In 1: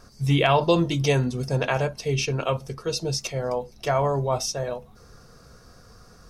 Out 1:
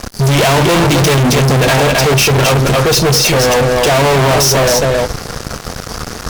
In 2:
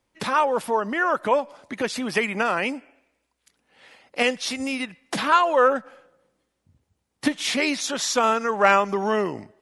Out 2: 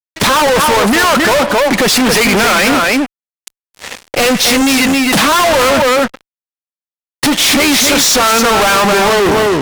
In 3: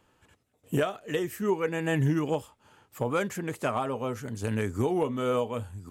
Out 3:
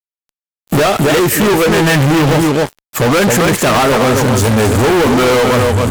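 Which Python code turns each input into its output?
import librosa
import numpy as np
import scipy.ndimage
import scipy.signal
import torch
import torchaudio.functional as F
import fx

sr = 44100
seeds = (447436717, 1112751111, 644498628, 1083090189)

y = x + 10.0 ** (-8.5 / 20.0) * np.pad(x, (int(268 * sr / 1000.0), 0))[:len(x)]
y = fx.fuzz(y, sr, gain_db=43.0, gate_db=-48.0)
y = y * 10.0 ** (4.0 / 20.0)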